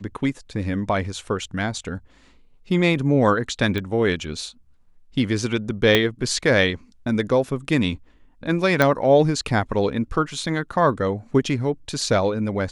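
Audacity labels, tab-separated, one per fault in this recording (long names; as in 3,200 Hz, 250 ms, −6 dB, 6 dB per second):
3.780000	3.780000	click −14 dBFS
5.950000	5.950000	click −3 dBFS
8.820000	8.820000	click −5 dBFS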